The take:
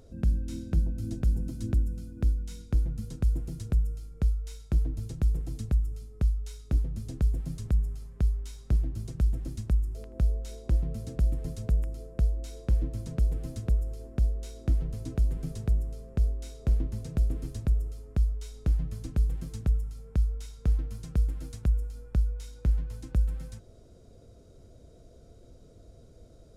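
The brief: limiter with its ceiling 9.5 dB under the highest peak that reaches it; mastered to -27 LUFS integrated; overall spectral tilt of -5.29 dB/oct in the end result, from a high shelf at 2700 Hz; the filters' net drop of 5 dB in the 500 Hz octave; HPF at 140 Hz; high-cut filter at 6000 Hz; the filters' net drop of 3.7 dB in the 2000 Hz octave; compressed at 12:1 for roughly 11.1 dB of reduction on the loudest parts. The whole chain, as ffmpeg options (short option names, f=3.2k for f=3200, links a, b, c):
-af "highpass=140,lowpass=6k,equalizer=f=500:t=o:g=-6.5,equalizer=f=2k:t=o:g=-7.5,highshelf=f=2.7k:g=6.5,acompressor=threshold=-41dB:ratio=12,volume=24dB,alimiter=limit=-15dB:level=0:latency=1"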